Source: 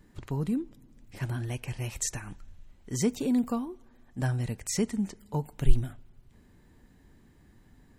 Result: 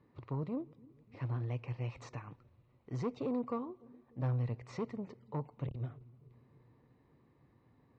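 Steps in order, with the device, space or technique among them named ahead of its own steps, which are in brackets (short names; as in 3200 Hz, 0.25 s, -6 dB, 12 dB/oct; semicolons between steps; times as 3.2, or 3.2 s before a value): analogue delay pedal into a guitar amplifier (analogue delay 0.295 s, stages 1024, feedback 58%, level -23.5 dB; tube stage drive 26 dB, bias 0.5; speaker cabinet 110–3700 Hz, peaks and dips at 120 Hz +7 dB, 200 Hz -6 dB, 500 Hz +6 dB, 1100 Hz +8 dB, 1600 Hz -9 dB, 3200 Hz -9 dB); gain -4.5 dB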